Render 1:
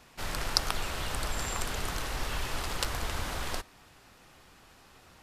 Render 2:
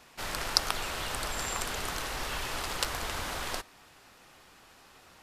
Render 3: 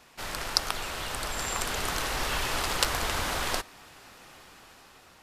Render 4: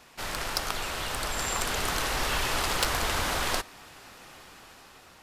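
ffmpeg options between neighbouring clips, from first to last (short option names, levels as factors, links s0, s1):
-af "lowshelf=f=210:g=-8,volume=1.19"
-af "dynaudnorm=f=290:g=7:m=2"
-af "asoftclip=type=tanh:threshold=0.141,volume=1.26"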